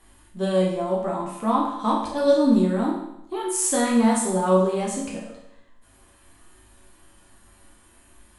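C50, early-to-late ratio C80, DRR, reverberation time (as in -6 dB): 3.5 dB, 6.5 dB, -4.0 dB, 0.80 s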